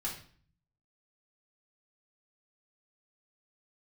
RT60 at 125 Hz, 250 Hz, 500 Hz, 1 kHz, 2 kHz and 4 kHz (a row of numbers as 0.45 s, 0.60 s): 0.95 s, 0.80 s, 0.50 s, 0.45 s, 0.45 s, 0.45 s